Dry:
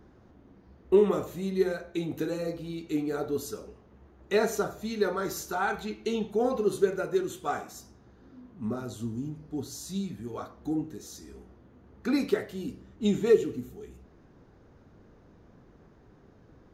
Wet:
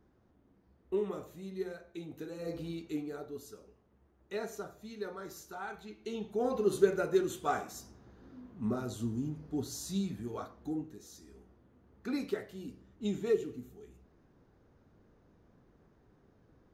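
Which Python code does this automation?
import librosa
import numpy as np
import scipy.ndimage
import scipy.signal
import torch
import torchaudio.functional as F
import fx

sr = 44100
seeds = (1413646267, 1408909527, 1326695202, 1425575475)

y = fx.gain(x, sr, db=fx.line((2.34, -12.0), (2.59, -1.0), (3.28, -13.0), (5.84, -13.0), (6.79, -1.0), (10.17, -1.0), (10.95, -8.5)))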